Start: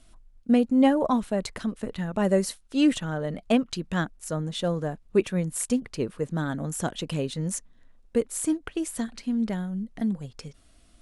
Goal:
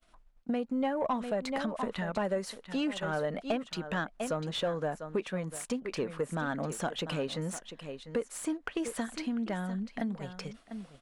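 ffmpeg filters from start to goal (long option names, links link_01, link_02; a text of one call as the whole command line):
ffmpeg -i in.wav -filter_complex "[0:a]equalizer=frequency=84:width_type=o:width=0.87:gain=-9.5,aecho=1:1:697:0.178,agate=range=-33dB:threshold=-47dB:ratio=3:detection=peak,equalizer=frequency=340:width_type=o:width=0.82:gain=-3.5,acompressor=threshold=-32dB:ratio=6,asplit=2[link_01][link_02];[link_02]highpass=frequency=720:poles=1,volume=16dB,asoftclip=type=tanh:threshold=-17.5dB[link_03];[link_01][link_03]amix=inputs=2:normalize=0,lowpass=frequency=1600:poles=1,volume=-6dB" out.wav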